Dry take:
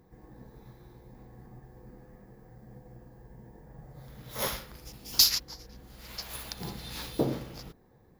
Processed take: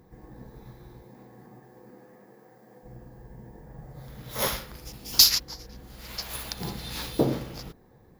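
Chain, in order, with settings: 1.02–2.82 s: high-pass 150 Hz -> 360 Hz 12 dB/octave; trim +4.5 dB

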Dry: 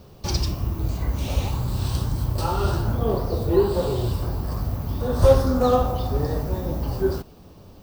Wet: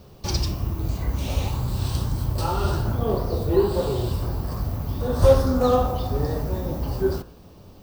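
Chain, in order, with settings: de-hum 57.44 Hz, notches 30

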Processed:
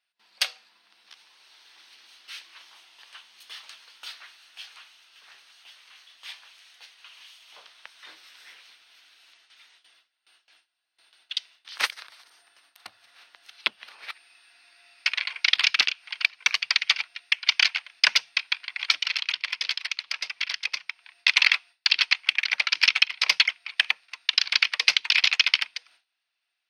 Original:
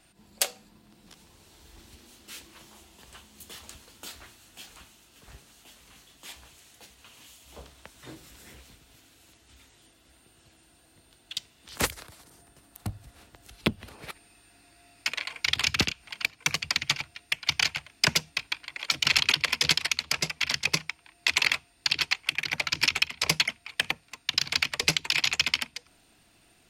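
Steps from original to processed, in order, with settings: gate with hold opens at -48 dBFS; high-pass 1.4 kHz 12 dB/octave; 19.01–21.27 s: compression 2.5:1, threshold -33 dBFS, peak gain reduction 11 dB; Savitzky-Golay filter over 15 samples; trim +6 dB

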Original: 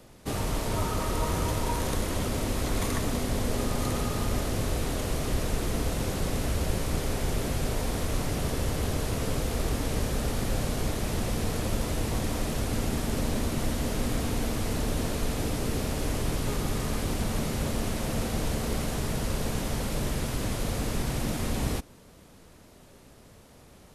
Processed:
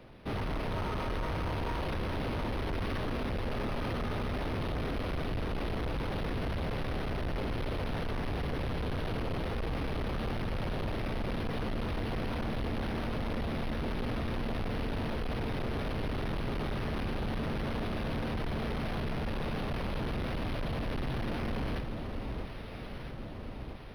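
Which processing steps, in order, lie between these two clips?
echo whose repeats swap between lows and highs 653 ms, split 1.3 kHz, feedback 73%, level -8.5 dB; overload inside the chain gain 31 dB; decimation joined by straight lines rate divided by 6×

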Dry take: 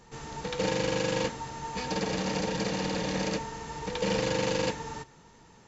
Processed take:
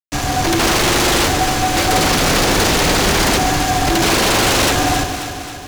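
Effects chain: frequency shift -160 Hz; Chebyshev shaper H 7 -11 dB, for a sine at -14.5 dBFS; fuzz box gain 45 dB, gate -45 dBFS; echo whose repeats swap between lows and highs 134 ms, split 810 Hz, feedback 76%, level -6 dB

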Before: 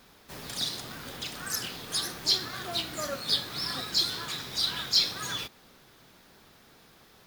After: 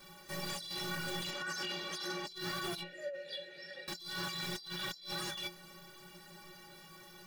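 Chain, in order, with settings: 1.30–2.27 s: three-band isolator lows -24 dB, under 190 Hz, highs -19 dB, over 6 kHz; 2.81–3.88 s: vowel filter e; inharmonic resonator 170 Hz, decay 0.3 s, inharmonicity 0.03; compressor with a negative ratio -51 dBFS, ratio -1; slew-rate limiter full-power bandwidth 20 Hz; trim +9 dB

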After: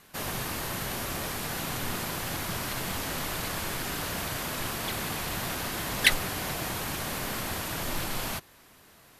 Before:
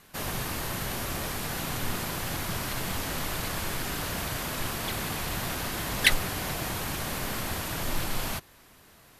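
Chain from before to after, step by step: bass shelf 93 Hz -5.5 dB

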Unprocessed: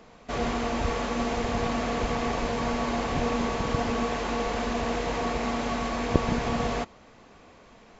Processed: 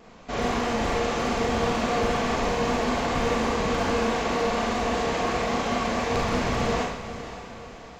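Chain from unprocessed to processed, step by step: wavefolder -21 dBFS; vibrato 4.9 Hz 58 cents; on a send: echo that smears into a reverb 537 ms, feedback 49%, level -12 dB; on the sum: Schroeder reverb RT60 0.62 s, combs from 32 ms, DRR -1.5 dB

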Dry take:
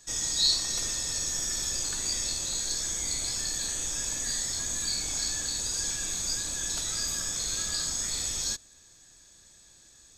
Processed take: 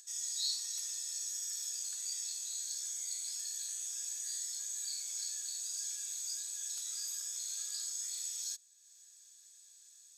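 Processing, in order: differentiator; upward compressor, threshold -44 dBFS; trim -7.5 dB

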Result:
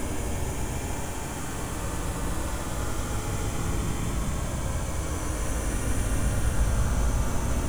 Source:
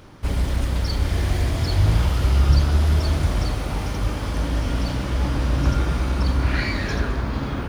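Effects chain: half-wave rectifier; resonant high shelf 5.9 kHz +6.5 dB, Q 3; Paulstretch 27×, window 0.10 s, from 4.15 s

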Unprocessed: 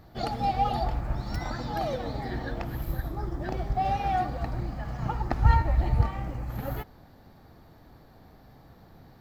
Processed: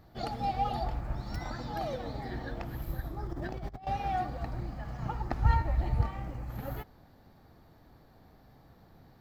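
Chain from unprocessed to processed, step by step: 3.26–3.87 s: compressor with a negative ratio -33 dBFS, ratio -0.5; trim -5 dB

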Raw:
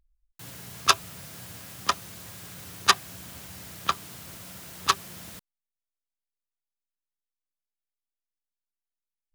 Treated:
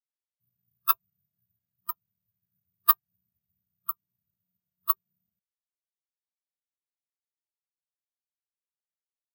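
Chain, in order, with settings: careless resampling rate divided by 3×, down filtered, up zero stuff; spectral contrast expander 2.5:1; trim -8 dB

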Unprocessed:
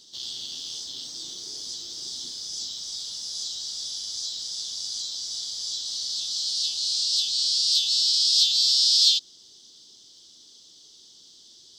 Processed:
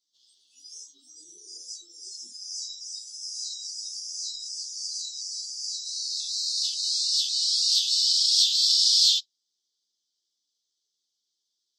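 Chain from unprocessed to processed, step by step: tone controls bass -8 dB, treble +6 dB; spectral noise reduction 28 dB; three-phase chorus; trim -1.5 dB

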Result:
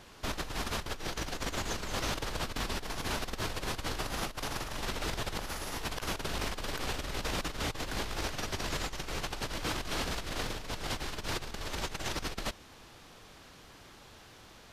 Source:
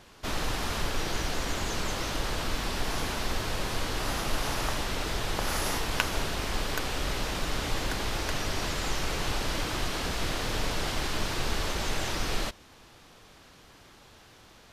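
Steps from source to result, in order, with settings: compressor with a negative ratio -32 dBFS, ratio -0.5; trim -3 dB

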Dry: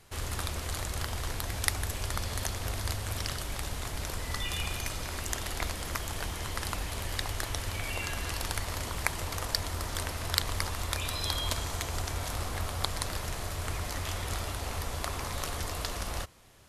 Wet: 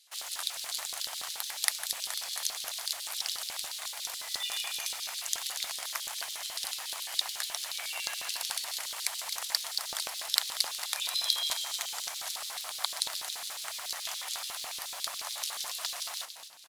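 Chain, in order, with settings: amplifier tone stack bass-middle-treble 10-0-10; in parallel at -7 dB: bit crusher 7-bit; on the sum: frequency-shifting echo 227 ms, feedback 46%, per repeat -80 Hz, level -10 dB; LFO high-pass square 7 Hz 700–3800 Hz; trim -1 dB

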